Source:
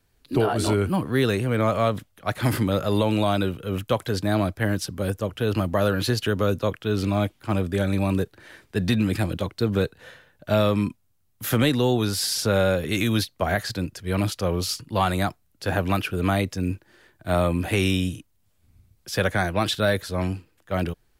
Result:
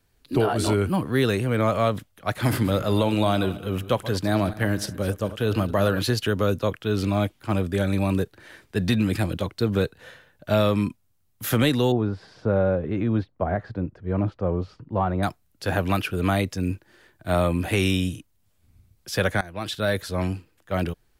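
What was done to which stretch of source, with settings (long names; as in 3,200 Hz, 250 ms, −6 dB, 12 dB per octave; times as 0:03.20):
0:02.29–0:05.99: feedback delay that plays each chunk backwards 107 ms, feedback 49%, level −14 dB
0:11.92–0:15.23: low-pass filter 1,000 Hz
0:19.41–0:20.04: fade in, from −19.5 dB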